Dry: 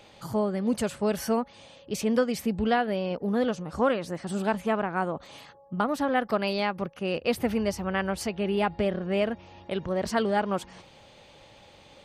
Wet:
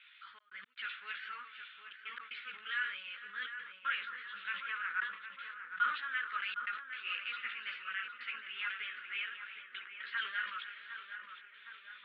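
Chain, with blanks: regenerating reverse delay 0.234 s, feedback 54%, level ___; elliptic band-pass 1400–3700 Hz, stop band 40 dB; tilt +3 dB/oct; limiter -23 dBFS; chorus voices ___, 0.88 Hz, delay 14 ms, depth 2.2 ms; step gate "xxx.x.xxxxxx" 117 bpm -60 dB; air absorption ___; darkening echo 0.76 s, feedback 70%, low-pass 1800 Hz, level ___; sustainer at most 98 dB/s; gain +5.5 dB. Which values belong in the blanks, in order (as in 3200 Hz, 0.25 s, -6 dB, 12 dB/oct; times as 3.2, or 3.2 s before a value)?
-14 dB, 4, 490 m, -7 dB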